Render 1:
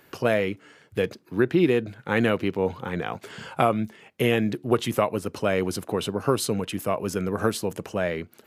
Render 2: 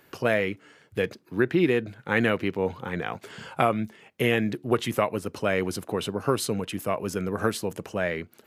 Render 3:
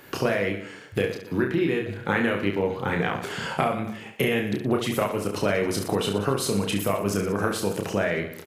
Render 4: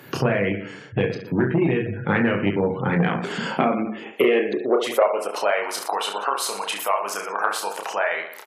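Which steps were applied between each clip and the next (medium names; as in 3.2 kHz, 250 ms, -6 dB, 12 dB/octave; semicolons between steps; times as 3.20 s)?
dynamic bell 1.9 kHz, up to +5 dB, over -39 dBFS, Q 1.8; trim -2 dB
compression, threshold -31 dBFS, peak gain reduction 14 dB; on a send: reverse bouncing-ball echo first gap 30 ms, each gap 1.3×, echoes 5; on the sum: trim +8.5 dB
high-pass sweep 130 Hz -> 860 Hz, 2.68–5.71 s; spectral gate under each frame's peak -30 dB strong; transformer saturation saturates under 450 Hz; trim +2.5 dB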